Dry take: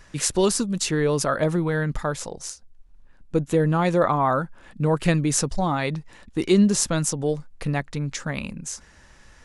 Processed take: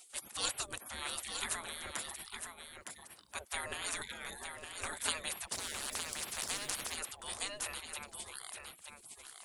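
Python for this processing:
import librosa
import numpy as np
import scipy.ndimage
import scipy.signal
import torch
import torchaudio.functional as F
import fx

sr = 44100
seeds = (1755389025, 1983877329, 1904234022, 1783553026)

p1 = fx.spec_gate(x, sr, threshold_db=-30, keep='weak')
p2 = fx.high_shelf_res(p1, sr, hz=7000.0, db=6.5, q=1.5)
p3 = p2 + fx.echo_single(p2, sr, ms=912, db=-6.5, dry=0)
p4 = fx.spectral_comp(p3, sr, ratio=4.0, at=(5.52, 6.94), fade=0.02)
y = p4 * librosa.db_to_amplitude(4.0)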